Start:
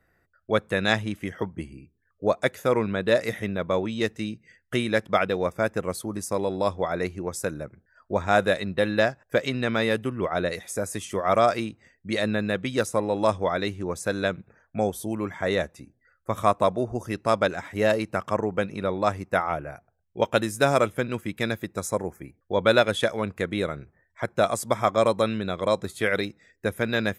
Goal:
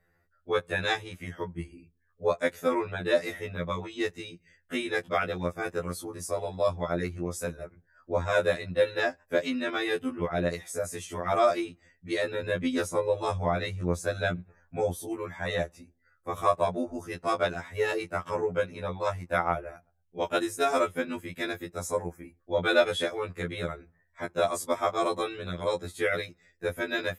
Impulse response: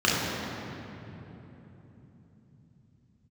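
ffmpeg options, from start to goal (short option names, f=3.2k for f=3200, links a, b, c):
-filter_complex "[0:a]asettb=1/sr,asplit=3[a][b][c];[a]atrim=end=12.434[d];[b]atrim=start=12.43:end=14.96,asetpts=PTS-STARTPTS,afade=t=in:d=0.004:c=qsin,afade=t=out:st=2.526:d=0.004:c=qsin,lowshelf=f=210:g=6.5[e];[c]atrim=start=14.956[f];[d][e]acrossfade=d=0.004:c1=hsin:c2=qsin[g];[g][f]acrossfade=d=0.004:c1=qsin:c2=hsin,afftfilt=real='re*2*eq(mod(b,4),0)':imag='im*2*eq(mod(b,4),0)':win_size=2048:overlap=0.75,volume=-1.5dB"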